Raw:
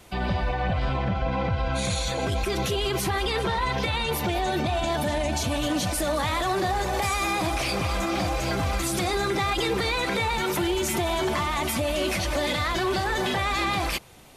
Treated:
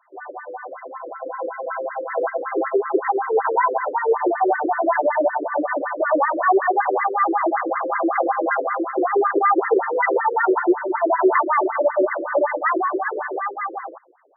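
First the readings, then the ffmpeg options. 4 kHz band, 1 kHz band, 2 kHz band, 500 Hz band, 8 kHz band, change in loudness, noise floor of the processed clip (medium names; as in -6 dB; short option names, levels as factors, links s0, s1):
under -40 dB, +7.5 dB, +3.0 dB, +8.0 dB, under -40 dB, +5.0 dB, -39 dBFS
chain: -af "dynaudnorm=f=340:g=11:m=5.01,bandreject=f=59.66:t=h:w=4,bandreject=f=119.32:t=h:w=4,bandreject=f=178.98:t=h:w=4,bandreject=f=238.64:t=h:w=4,bandreject=f=298.3:t=h:w=4,bandreject=f=357.96:t=h:w=4,bandreject=f=417.62:t=h:w=4,afftfilt=real='re*between(b*sr/1024,390*pow(1500/390,0.5+0.5*sin(2*PI*5.3*pts/sr))/1.41,390*pow(1500/390,0.5+0.5*sin(2*PI*5.3*pts/sr))*1.41)':imag='im*between(b*sr/1024,390*pow(1500/390,0.5+0.5*sin(2*PI*5.3*pts/sr))/1.41,390*pow(1500/390,0.5+0.5*sin(2*PI*5.3*pts/sr))*1.41)':win_size=1024:overlap=0.75"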